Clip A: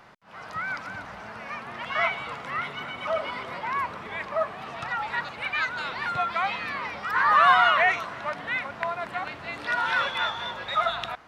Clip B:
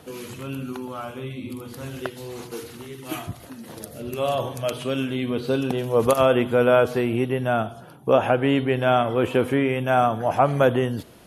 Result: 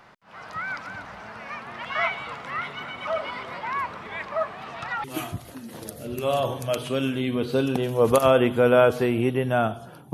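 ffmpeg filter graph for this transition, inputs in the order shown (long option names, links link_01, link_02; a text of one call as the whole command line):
ffmpeg -i cue0.wav -i cue1.wav -filter_complex "[0:a]apad=whole_dur=10.13,atrim=end=10.13,atrim=end=5.042[link_01];[1:a]atrim=start=2.988:end=8.08[link_02];[link_01][link_02]acrossfade=duration=0.004:curve1=hsin:curve2=hsin" out.wav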